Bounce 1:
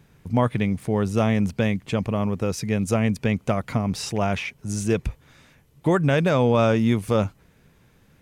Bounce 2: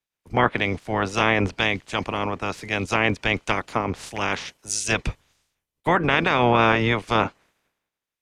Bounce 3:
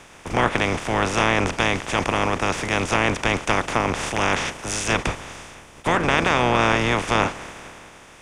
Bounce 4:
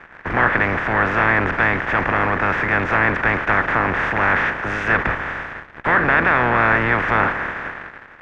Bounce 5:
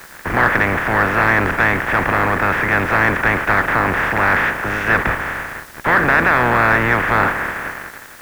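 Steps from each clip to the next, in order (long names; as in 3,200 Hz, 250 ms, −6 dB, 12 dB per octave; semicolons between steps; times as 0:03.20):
ceiling on every frequency bin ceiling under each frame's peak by 24 dB; treble cut that deepens with the level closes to 2,500 Hz, closed at −15 dBFS; multiband upward and downward expander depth 100%
compressor on every frequency bin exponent 0.4; level −4 dB
in parallel at −8 dB: fuzz pedal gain 38 dB, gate −41 dBFS; on the sum: low-pass with resonance 1,700 Hz, resonance Q 3.9; level −5 dB
in parallel at −4 dB: soft clipping −10 dBFS, distortion −16 dB; on the sum: background noise white −42 dBFS; level −1.5 dB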